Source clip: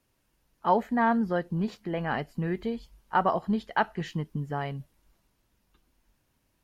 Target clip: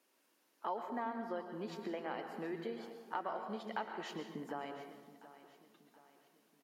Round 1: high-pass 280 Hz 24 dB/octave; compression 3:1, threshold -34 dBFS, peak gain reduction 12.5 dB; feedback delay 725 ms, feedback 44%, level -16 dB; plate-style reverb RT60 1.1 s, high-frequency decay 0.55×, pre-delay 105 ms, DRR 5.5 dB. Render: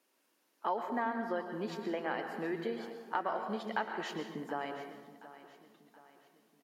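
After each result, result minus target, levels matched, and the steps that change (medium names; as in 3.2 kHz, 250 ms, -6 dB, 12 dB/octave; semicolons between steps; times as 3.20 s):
compression: peak gain reduction -5 dB; 2 kHz band +2.5 dB
change: compression 3:1, threshold -42 dBFS, peak gain reduction 17.5 dB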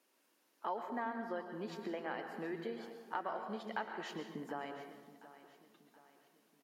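2 kHz band +2.5 dB
add after high-pass: dynamic bell 1.7 kHz, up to -7 dB, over -47 dBFS, Q 5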